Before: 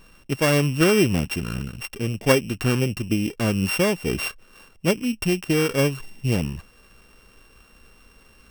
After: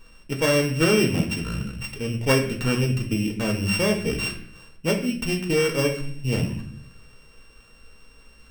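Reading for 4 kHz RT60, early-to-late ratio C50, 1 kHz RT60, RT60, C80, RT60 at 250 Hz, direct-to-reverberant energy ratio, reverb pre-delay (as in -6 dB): 0.50 s, 8.5 dB, 0.50 s, 0.60 s, 12.0 dB, 0.95 s, 1.5 dB, 4 ms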